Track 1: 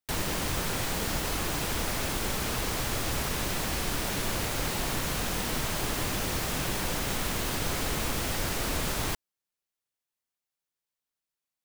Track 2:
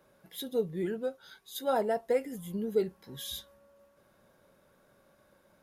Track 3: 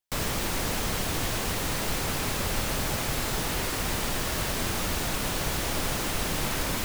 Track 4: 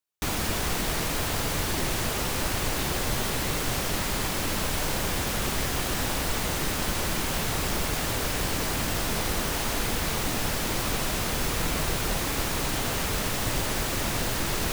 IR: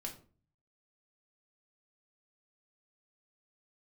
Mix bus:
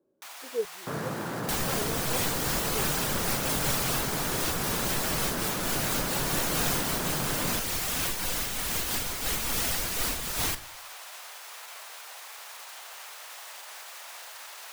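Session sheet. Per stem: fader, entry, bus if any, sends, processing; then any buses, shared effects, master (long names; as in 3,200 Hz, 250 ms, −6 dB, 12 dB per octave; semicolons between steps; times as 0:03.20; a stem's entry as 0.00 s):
0.0 dB, 1.40 s, send −5 dB, reverb reduction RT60 0.61 s; spectral tilt +2 dB per octave; amplitude modulation by smooth noise, depth 65%
+1.0 dB, 0.00 s, no send, band-pass on a step sequencer 4.6 Hz 340–1,700 Hz
−1.0 dB, 0.75 s, no send, elliptic band-pass filter 130–1,600 Hz
−10.0 dB, 0.00 s, no send, high-pass filter 700 Hz 24 dB per octave; brickwall limiter −24 dBFS, peak gain reduction 6.5 dB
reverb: on, RT60 0.40 s, pre-delay 4 ms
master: low-shelf EQ 88 Hz +8.5 dB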